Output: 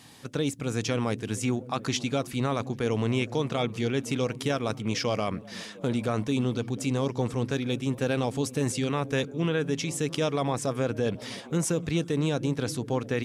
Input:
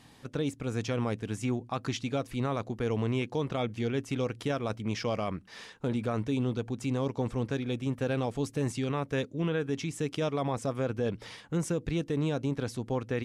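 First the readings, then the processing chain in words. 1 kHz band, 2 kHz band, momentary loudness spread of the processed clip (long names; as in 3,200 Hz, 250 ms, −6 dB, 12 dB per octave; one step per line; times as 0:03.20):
+3.5 dB, +5.0 dB, 3 LU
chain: high-pass filter 77 Hz
high-shelf EQ 3,600 Hz +8 dB
echo through a band-pass that steps 235 ms, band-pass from 160 Hz, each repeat 0.7 octaves, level −11 dB
level +3 dB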